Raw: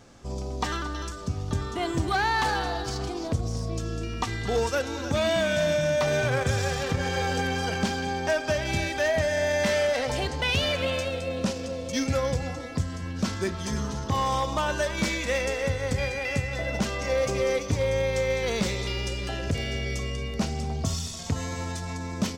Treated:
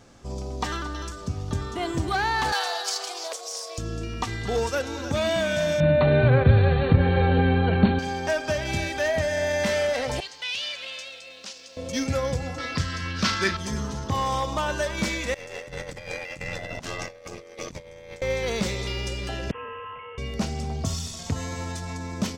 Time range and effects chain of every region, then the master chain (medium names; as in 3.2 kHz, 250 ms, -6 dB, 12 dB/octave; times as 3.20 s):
2.52–3.78 s: steep high-pass 470 Hz + treble shelf 2.6 kHz +11.5 dB
5.80–7.99 s: brick-wall FIR low-pass 4.4 kHz + bass shelf 460 Hz +11.5 dB + band-stop 3.3 kHz, Q 10
10.20–11.77 s: band-pass filter 4.6 kHz, Q 0.95 + word length cut 12-bit, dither triangular + loudspeaker Doppler distortion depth 0.16 ms
12.58–13.57 s: high-order bell 2.5 kHz +11.5 dB 2.6 oct + doubling 36 ms -10.5 dB
15.34–18.22 s: bass shelf 390 Hz -4.5 dB + ring modulator 43 Hz + compressor with a negative ratio -36 dBFS, ratio -0.5
19.51–20.18 s: high-pass 1 kHz + frequency inversion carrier 3.3 kHz
whole clip: none